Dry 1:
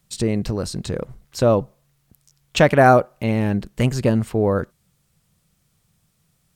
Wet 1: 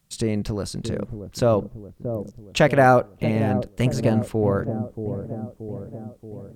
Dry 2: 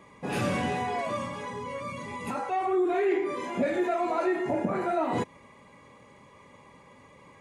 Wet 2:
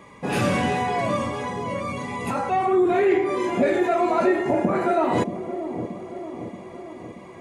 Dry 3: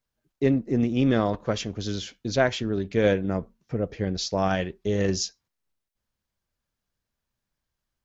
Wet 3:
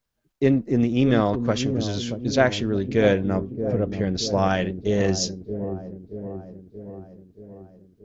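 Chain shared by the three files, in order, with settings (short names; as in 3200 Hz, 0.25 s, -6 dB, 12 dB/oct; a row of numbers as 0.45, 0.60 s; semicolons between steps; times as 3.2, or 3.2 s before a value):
dark delay 0.629 s, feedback 59%, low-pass 530 Hz, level -7 dB; match loudness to -23 LUFS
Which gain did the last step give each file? -3.0, +6.5, +3.0 dB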